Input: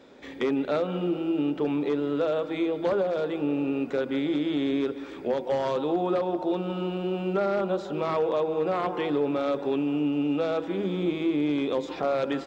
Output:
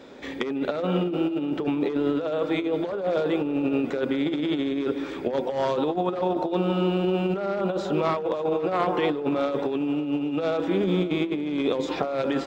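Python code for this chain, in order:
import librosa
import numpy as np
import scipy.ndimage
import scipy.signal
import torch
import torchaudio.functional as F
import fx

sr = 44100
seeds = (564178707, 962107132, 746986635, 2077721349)

p1 = fx.over_compress(x, sr, threshold_db=-28.0, ratio=-0.5)
p2 = p1 + fx.echo_single(p1, sr, ms=551, db=-19.5, dry=0)
y = p2 * librosa.db_to_amplitude(4.0)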